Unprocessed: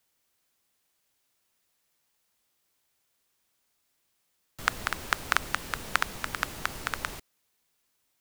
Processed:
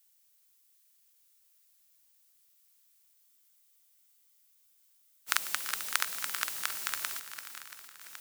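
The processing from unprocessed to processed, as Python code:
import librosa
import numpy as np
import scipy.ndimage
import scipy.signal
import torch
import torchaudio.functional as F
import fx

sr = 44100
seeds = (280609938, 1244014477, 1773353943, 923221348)

p1 = fx.reverse_delay(x, sr, ms=691, wet_db=-12.0)
p2 = fx.tilt_eq(p1, sr, slope=4.5)
p3 = p2 + fx.echo_heads(p2, sr, ms=340, heads='first and second', feedback_pct=51, wet_db=-16.0, dry=0)
p4 = fx.spec_freeze(p3, sr, seeds[0], at_s=3.16, hold_s=2.13)
y = p4 * 10.0 ** (-8.5 / 20.0)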